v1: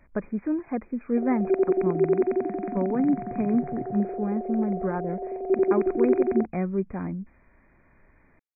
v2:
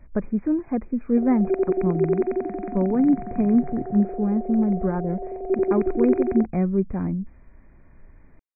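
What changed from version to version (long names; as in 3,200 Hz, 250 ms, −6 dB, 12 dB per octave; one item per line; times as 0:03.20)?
speech: add spectral tilt −2.5 dB per octave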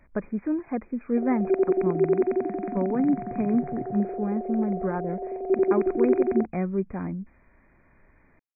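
speech: add spectral tilt +2.5 dB per octave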